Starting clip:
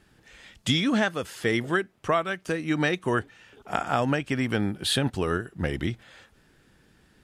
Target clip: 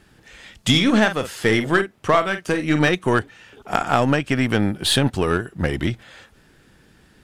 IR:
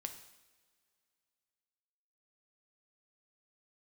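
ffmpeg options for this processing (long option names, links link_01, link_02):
-filter_complex "[0:a]asettb=1/sr,asplit=3[link_01][link_02][link_03];[link_01]atrim=end=0.694[link_04];[link_02]atrim=start=0.69:end=2.89,asetpts=PTS-STARTPTS,afade=type=in:duration=0.004:curve=qsin,afade=type=out:start_time=2.196:duration=0.004:curve=qsin,asplit=2[link_05][link_06];[link_06]adelay=46,volume=-9.5dB[link_07];[link_05][link_07]amix=inputs=2:normalize=0,atrim=end_sample=97020[link_08];[link_03]atrim=start=2.886[link_09];[link_04][link_08]acrossfade=duration=0.004:curve1=hsin:curve2=qsin[link_10];[link_10][link_09]acrossfade=duration=0.004:curve1=qsin:curve2=hsin,aeval=exprs='0.447*(cos(1*acos(clip(val(0)/0.447,-1,1)))-cos(1*PI/2))+0.0282*(cos(6*acos(clip(val(0)/0.447,-1,1)))-cos(6*PI/2))+0.0355*(cos(8*acos(clip(val(0)/0.447,-1,1)))-cos(8*PI/2))':channel_layout=same,volume=6.5dB"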